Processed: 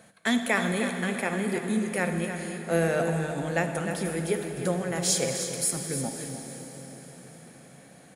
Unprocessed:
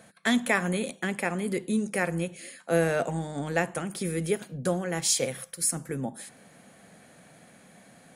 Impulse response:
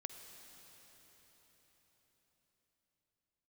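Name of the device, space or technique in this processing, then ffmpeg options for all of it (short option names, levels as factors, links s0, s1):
cave: -filter_complex "[0:a]aecho=1:1:305:0.335[s0];[1:a]atrim=start_sample=2205[s1];[s0][s1]afir=irnorm=-1:irlink=0,volume=1.5"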